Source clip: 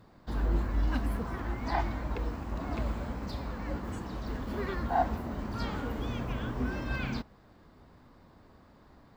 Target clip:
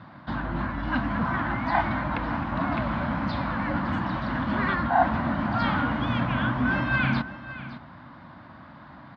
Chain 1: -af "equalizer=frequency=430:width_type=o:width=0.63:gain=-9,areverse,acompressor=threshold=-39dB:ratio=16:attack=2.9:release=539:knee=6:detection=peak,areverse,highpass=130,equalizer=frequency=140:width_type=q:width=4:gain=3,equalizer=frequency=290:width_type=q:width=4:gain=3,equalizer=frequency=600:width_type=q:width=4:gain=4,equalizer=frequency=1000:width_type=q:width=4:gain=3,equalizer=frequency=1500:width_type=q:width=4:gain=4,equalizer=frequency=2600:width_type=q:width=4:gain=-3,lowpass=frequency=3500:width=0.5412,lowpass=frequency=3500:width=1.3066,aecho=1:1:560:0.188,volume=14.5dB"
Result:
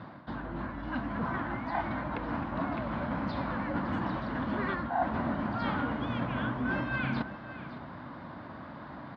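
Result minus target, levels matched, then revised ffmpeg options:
downward compressor: peak gain reduction +11 dB; 500 Hz band +3.0 dB
-af "equalizer=frequency=430:width_type=o:width=0.63:gain=-21,areverse,acompressor=threshold=-28.5dB:ratio=16:attack=2.9:release=539:knee=6:detection=peak,areverse,highpass=130,equalizer=frequency=140:width_type=q:width=4:gain=3,equalizer=frequency=290:width_type=q:width=4:gain=3,equalizer=frequency=600:width_type=q:width=4:gain=4,equalizer=frequency=1000:width_type=q:width=4:gain=3,equalizer=frequency=1500:width_type=q:width=4:gain=4,equalizer=frequency=2600:width_type=q:width=4:gain=-3,lowpass=frequency=3500:width=0.5412,lowpass=frequency=3500:width=1.3066,aecho=1:1:560:0.188,volume=14.5dB"

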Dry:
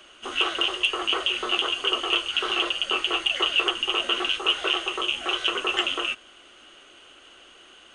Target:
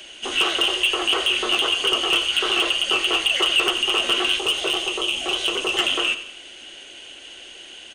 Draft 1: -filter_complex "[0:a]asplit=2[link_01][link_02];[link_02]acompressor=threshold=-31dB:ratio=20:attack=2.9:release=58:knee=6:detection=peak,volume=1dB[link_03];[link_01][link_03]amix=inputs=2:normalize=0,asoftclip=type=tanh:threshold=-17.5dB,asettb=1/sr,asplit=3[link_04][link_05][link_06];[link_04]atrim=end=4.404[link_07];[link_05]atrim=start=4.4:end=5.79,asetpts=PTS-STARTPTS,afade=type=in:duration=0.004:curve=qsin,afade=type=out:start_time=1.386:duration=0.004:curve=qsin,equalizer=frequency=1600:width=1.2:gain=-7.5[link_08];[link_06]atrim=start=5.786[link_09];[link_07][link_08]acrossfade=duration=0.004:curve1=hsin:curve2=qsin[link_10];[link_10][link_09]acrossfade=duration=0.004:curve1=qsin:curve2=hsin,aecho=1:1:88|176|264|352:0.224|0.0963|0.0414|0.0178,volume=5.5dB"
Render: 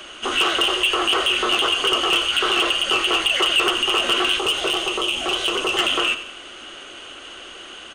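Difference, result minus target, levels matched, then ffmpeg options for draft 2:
1,000 Hz band +3.5 dB
-filter_complex "[0:a]asplit=2[link_01][link_02];[link_02]acompressor=threshold=-31dB:ratio=20:attack=2.9:release=58:knee=6:detection=peak,highpass=frequency=1200:width=0.5412,highpass=frequency=1200:width=1.3066,volume=1dB[link_03];[link_01][link_03]amix=inputs=2:normalize=0,asoftclip=type=tanh:threshold=-17.5dB,asettb=1/sr,asplit=3[link_04][link_05][link_06];[link_04]atrim=end=4.404[link_07];[link_05]atrim=start=4.4:end=5.79,asetpts=PTS-STARTPTS,afade=type=in:duration=0.004:curve=qsin,afade=type=out:start_time=1.386:duration=0.004:curve=qsin,equalizer=frequency=1600:width=1.2:gain=-7.5[link_08];[link_06]atrim=start=5.786[link_09];[link_07][link_08]acrossfade=duration=0.004:curve1=hsin:curve2=qsin[link_10];[link_10][link_09]acrossfade=duration=0.004:curve1=qsin:curve2=hsin,aecho=1:1:88|176|264|352:0.224|0.0963|0.0414|0.0178,volume=5.5dB"

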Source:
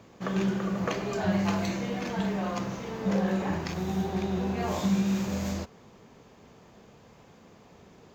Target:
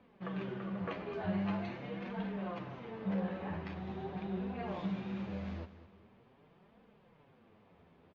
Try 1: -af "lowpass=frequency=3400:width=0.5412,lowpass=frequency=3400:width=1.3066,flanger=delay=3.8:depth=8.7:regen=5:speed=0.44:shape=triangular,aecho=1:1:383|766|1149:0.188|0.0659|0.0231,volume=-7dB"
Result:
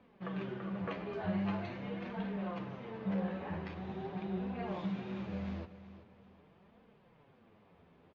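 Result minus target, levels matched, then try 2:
echo 176 ms late
-af "lowpass=frequency=3400:width=0.5412,lowpass=frequency=3400:width=1.3066,flanger=delay=3.8:depth=8.7:regen=5:speed=0.44:shape=triangular,aecho=1:1:207|414|621:0.188|0.0659|0.0231,volume=-7dB"

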